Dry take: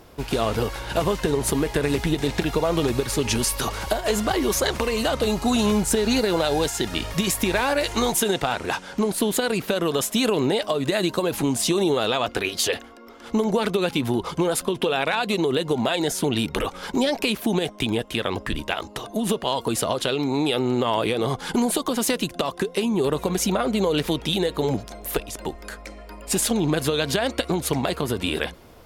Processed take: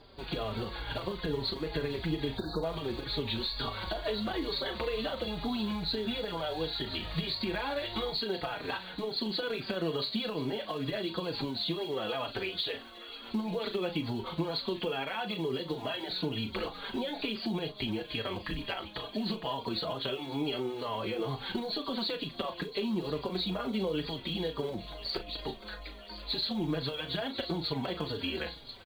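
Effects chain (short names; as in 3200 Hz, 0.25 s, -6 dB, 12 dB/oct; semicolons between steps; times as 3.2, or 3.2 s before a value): nonlinear frequency compression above 3200 Hz 4:1; in parallel at -7.5 dB: short-mantissa float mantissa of 2-bit; on the sum: doubler 37 ms -10 dB; thin delay 1.033 s, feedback 66%, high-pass 1800 Hz, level -14.5 dB; spectral delete 2.38–2.63, 1700–3600 Hz; compressor, threshold -20 dBFS, peak gain reduction 8.5 dB; on a send at -16.5 dB: reverb RT60 0.35 s, pre-delay 6 ms; on the sum: endless flanger 4.5 ms -2.2 Hz; gain -7.5 dB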